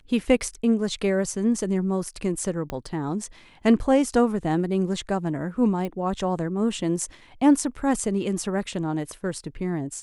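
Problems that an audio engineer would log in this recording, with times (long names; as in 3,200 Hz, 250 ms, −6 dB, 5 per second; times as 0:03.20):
0:02.70: click −16 dBFS
0:05.85: click −19 dBFS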